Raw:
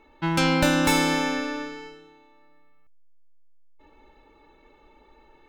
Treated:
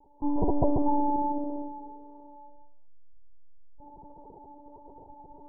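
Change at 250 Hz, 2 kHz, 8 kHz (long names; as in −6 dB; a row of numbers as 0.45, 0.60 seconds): −4.0 dB, below −40 dB, below −40 dB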